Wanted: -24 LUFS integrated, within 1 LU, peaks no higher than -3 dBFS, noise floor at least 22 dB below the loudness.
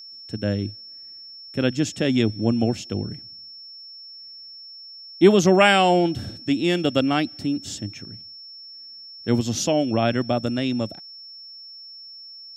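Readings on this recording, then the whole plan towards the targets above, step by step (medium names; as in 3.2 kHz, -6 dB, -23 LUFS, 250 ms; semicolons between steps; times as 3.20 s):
steady tone 5.4 kHz; tone level -39 dBFS; loudness -22.0 LUFS; peak level -3.0 dBFS; loudness target -24.0 LUFS
-> band-stop 5.4 kHz, Q 30; trim -2 dB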